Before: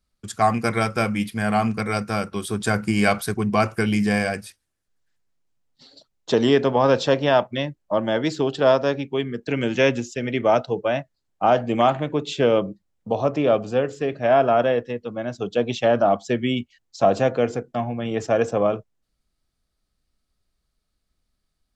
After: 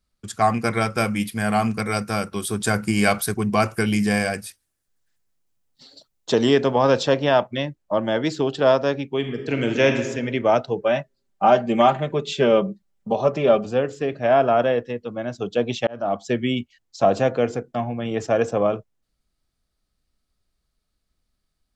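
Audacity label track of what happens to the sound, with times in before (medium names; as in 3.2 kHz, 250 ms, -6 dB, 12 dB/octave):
0.970000	7.030000	treble shelf 7.9 kHz +10 dB
9.170000	10.080000	reverb throw, RT60 1.2 s, DRR 5 dB
10.810000	13.660000	comb 5.1 ms
15.870000	16.270000	fade in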